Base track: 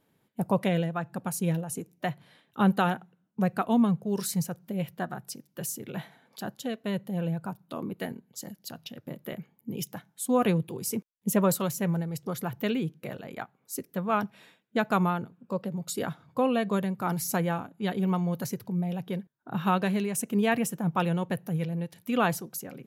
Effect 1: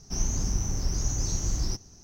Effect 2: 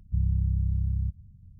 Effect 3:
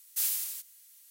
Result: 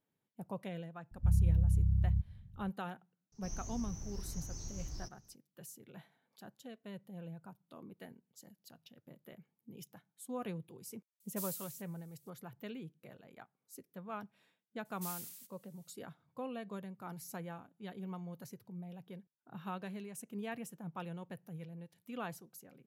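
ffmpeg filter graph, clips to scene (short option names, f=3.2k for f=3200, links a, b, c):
-filter_complex "[3:a]asplit=2[a][b];[0:a]volume=-17dB[c];[a]equalizer=f=870:w=0.34:g=-11.5[d];[2:a]atrim=end=1.59,asetpts=PTS-STARTPTS,volume=-2.5dB,afade=t=in:d=0.004:c=hsin,afade=t=out:st=1.586:d=0.004:c=hsin,adelay=1110[e];[1:a]atrim=end=2.03,asetpts=PTS-STARTPTS,volume=-16dB,afade=t=in:d=0.004:c=hsin,afade=t=out:st=2.026:d=0.004:c=hsin,adelay=3320[f];[d]atrim=end=1.1,asetpts=PTS-STARTPTS,volume=-13dB,afade=t=in:d=0.004:c=hsin,afade=t=out:st=1.096:d=0.004:c=hsin,adelay=11200[g];[b]atrim=end=1.1,asetpts=PTS-STARTPTS,volume=-14.5dB,afade=t=in:d=0.004:c=hsin,afade=t=out:st=1.096:d=0.004:c=hsin,adelay=14850[h];[c][e][f][g][h]amix=inputs=5:normalize=0"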